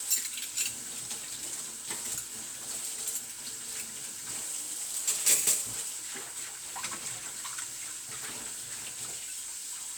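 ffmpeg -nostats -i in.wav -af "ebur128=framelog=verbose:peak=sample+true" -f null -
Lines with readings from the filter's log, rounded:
Integrated loudness:
  I:         -32.3 LUFS
  Threshold: -42.3 LUFS
Loudness range:
  LRA:         6.7 LU
  Threshold: -51.8 LUFS
  LRA low:   -36.1 LUFS
  LRA high:  -29.3 LUFS
Sample peak:
  Peak:      -11.2 dBFS
True peak:
  Peak:      -10.9 dBFS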